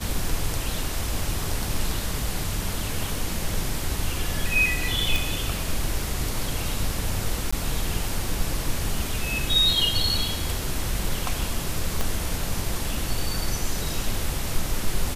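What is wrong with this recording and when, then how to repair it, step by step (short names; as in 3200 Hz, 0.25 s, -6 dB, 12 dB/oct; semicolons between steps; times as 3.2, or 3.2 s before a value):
5.16 pop
7.51–7.53 gap 15 ms
12.01 pop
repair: de-click; interpolate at 7.51, 15 ms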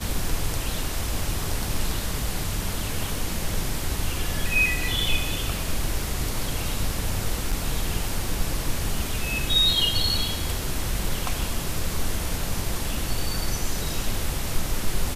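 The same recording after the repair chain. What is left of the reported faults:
12.01 pop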